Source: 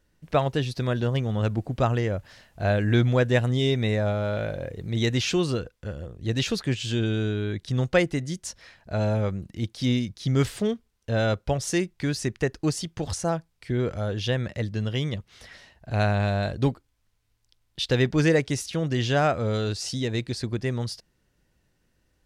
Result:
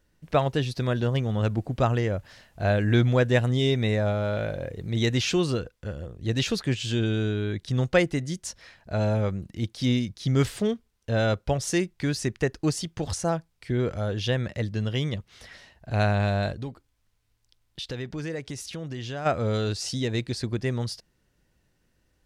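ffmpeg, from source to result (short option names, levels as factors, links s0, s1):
-filter_complex "[0:a]asplit=3[s0][s1][s2];[s0]afade=t=out:st=16.52:d=0.02[s3];[s1]acompressor=threshold=0.0178:ratio=2.5:attack=3.2:release=140:knee=1:detection=peak,afade=t=in:st=16.52:d=0.02,afade=t=out:st=19.25:d=0.02[s4];[s2]afade=t=in:st=19.25:d=0.02[s5];[s3][s4][s5]amix=inputs=3:normalize=0"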